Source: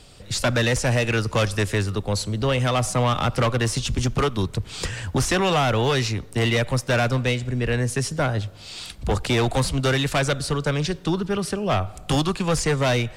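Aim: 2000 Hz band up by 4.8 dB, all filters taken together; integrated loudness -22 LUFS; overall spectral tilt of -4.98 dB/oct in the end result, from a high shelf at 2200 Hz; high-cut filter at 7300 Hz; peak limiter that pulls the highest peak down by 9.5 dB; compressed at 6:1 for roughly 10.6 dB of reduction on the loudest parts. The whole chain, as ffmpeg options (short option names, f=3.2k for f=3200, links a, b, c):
-af "lowpass=7.3k,equalizer=f=2k:t=o:g=8,highshelf=f=2.2k:g=-3.5,acompressor=threshold=-28dB:ratio=6,volume=11.5dB,alimiter=limit=-13.5dB:level=0:latency=1"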